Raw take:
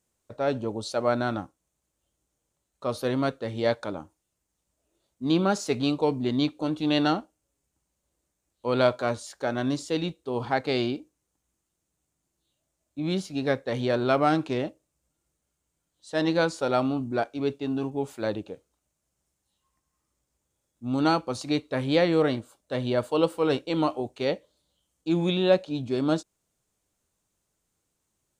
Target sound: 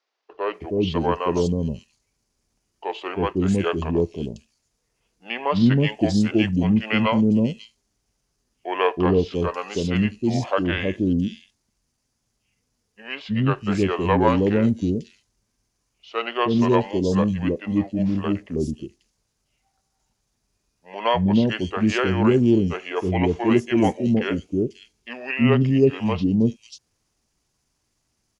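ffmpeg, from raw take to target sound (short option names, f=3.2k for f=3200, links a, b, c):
-filter_complex "[0:a]asetrate=32097,aresample=44100,atempo=1.37395,acrossover=split=470|4200[a][b][c];[a]adelay=320[d];[c]adelay=540[e];[d][b][e]amix=inputs=3:normalize=0,volume=7dB"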